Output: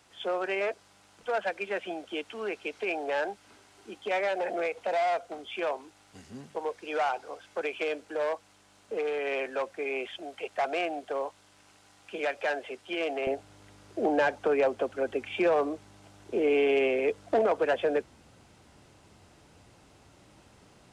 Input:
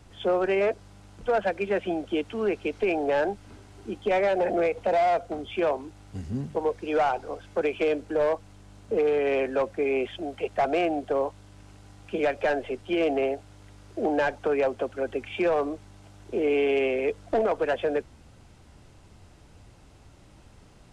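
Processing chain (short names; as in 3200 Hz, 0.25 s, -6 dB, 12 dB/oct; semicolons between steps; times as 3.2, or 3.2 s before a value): HPF 1000 Hz 6 dB/oct, from 13.27 s 200 Hz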